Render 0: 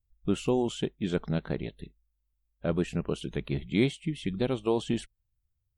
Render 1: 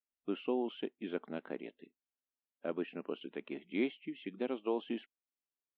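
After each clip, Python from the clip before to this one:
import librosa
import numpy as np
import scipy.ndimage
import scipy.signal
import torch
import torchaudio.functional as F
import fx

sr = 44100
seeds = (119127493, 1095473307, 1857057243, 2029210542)

y = scipy.signal.sosfilt(scipy.signal.ellip(3, 1.0, 40, [250.0, 2900.0], 'bandpass', fs=sr, output='sos'), x)
y = y * 10.0 ** (-6.5 / 20.0)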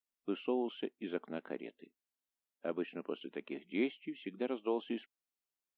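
y = fx.peak_eq(x, sr, hz=100.0, db=-13.0, octaves=0.47)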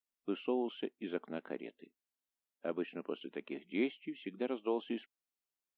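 y = x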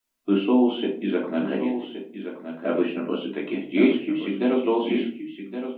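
y = x + 10.0 ** (-9.5 / 20.0) * np.pad(x, (int(1120 * sr / 1000.0), 0))[:len(x)]
y = fx.room_shoebox(y, sr, seeds[0], volume_m3=280.0, walls='furnished', distance_m=2.9)
y = y * 10.0 ** (8.5 / 20.0)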